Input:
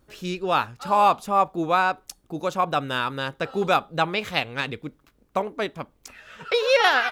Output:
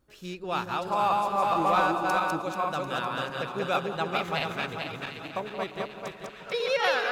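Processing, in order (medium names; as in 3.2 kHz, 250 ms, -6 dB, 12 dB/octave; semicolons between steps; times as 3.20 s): backward echo that repeats 220 ms, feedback 64%, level -1.5 dB; two-band feedback delay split 1.5 kHz, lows 175 ms, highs 744 ms, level -12 dB; 1.42–2.42 s: waveshaping leveller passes 1; trim -8.5 dB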